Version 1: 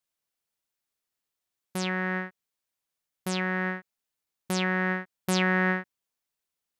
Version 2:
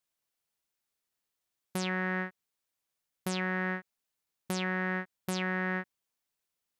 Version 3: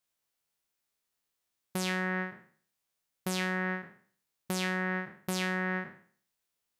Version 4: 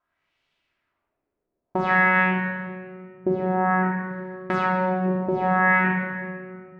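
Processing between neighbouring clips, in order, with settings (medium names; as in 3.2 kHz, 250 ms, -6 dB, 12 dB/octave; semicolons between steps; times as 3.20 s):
peak limiter -21.5 dBFS, peak gain reduction 9 dB
spectral sustain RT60 0.49 s
LFO low-pass sine 0.54 Hz 430–3100 Hz; simulated room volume 3800 m³, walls mixed, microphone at 2.9 m; trim +8 dB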